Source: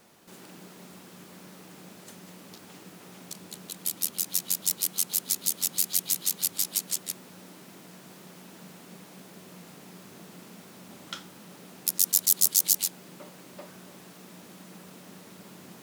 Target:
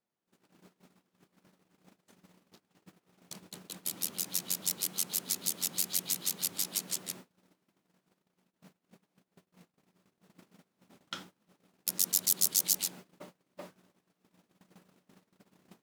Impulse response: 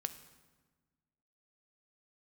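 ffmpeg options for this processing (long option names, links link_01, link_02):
-filter_complex "[0:a]highshelf=frequency=5400:gain=-6,agate=range=-30dB:threshold=-45dB:ratio=16:detection=peak,asettb=1/sr,asplit=3[link_01][link_02][link_03];[link_01]atrim=end=8.174[link_04];[link_02]atrim=start=8.17:end=10.39,asetpts=PTS-STARTPTS,afade=type=in:duration=0.004:curve=qsin,afade=type=out:start_time=2.216:duration=0.004:curve=qsin,tremolo=f=4.2:d=0.81[link_05];[link_03]atrim=start=10.386[link_06];[link_04][link_05]acrossfade=duration=0.004:curve1=hsin:curve2=qsin[link_07];[link_07][link_06]acrossfade=duration=0.004:curve1=qsin:curve2=hsin,volume=-1dB"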